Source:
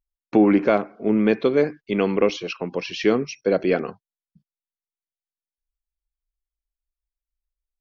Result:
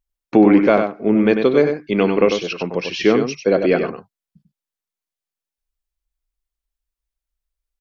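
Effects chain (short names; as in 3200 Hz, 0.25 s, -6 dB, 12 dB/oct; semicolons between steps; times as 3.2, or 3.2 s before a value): echo 96 ms -7 dB; gain +4 dB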